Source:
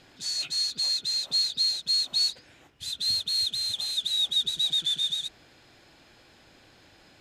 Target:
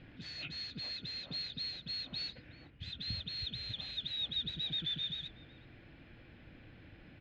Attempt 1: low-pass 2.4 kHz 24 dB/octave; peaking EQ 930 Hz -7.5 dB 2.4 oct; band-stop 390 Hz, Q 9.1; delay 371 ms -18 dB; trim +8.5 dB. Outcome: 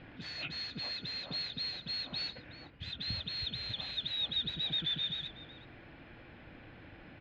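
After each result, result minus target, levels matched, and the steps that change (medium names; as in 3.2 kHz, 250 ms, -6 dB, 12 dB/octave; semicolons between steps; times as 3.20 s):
1 kHz band +6.0 dB; echo-to-direct +7.5 dB
change: peaking EQ 930 Hz -17 dB 2.4 oct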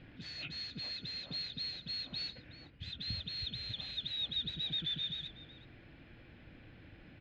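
echo-to-direct +7.5 dB
change: delay 371 ms -25.5 dB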